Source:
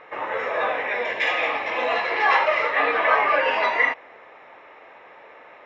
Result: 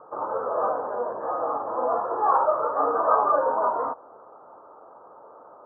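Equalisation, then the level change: high-pass 69 Hz; steep low-pass 1.4 kHz 96 dB/octave; 0.0 dB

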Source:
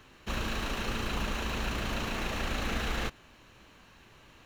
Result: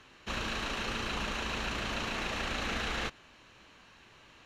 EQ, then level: distance through air 65 m; tilt EQ +1.5 dB/octave; 0.0 dB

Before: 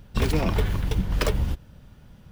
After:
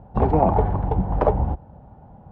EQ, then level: high-pass 46 Hz; resonant low-pass 800 Hz, resonance Q 6; +3.5 dB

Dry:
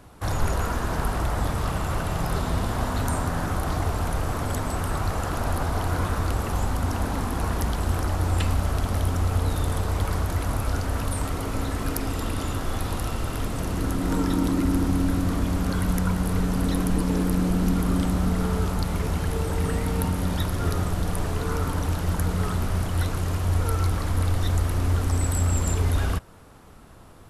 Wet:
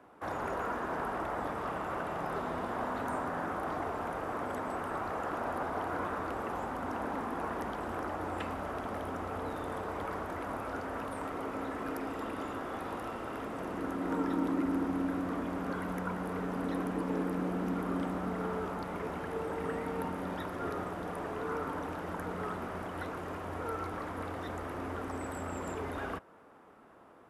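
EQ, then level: high-pass 43 Hz; three-band isolator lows -21 dB, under 230 Hz, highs -17 dB, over 2.3 kHz; band-stop 4.2 kHz, Q 21; -4.0 dB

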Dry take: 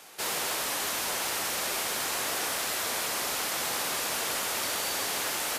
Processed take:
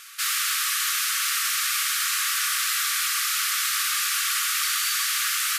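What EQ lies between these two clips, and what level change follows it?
brick-wall FIR high-pass 1.1 kHz; +7.0 dB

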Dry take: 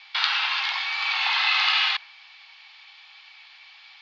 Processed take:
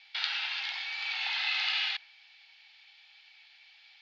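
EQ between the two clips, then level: peaking EQ 1.1 kHz -14.5 dB 0.46 oct; -8.0 dB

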